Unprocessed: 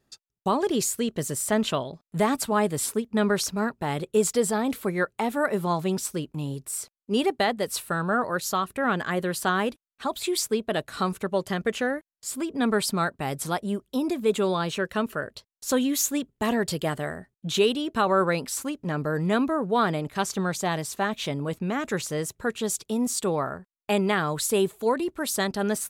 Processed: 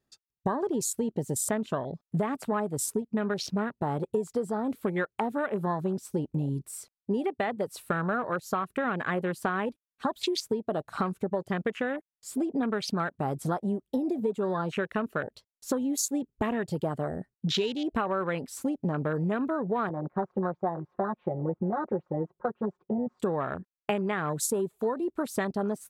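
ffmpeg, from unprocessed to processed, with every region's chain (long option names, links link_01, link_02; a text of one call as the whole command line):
ffmpeg -i in.wav -filter_complex "[0:a]asettb=1/sr,asplit=3[link_01][link_02][link_03];[link_01]atrim=end=19.894[link_04];[link_02]atrim=start=19.89:end=23.2,asetpts=PTS-STARTPTS,afade=type=in:duration=0.004:curve=qsin,afade=type=out:start_time=3.306:duration=0.004:curve=qsin,lowpass=frequency=1100:width=0.5412,lowpass=frequency=1100:width=1.3066,aemphasis=mode=production:type=riaa,aecho=1:1:5.6:0.95,atrim=end_sample=145971[link_05];[link_03]atrim=start=23.196[link_06];[link_04][link_05]acrossfade=duration=0.004:curve1=hsin:curve2=qsin[link_07];[link_07][link_06]acrossfade=duration=0.004:curve1=qsin:curve2=hsin,afwtdn=0.0251,acompressor=threshold=-33dB:ratio=12,volume=7.5dB" out.wav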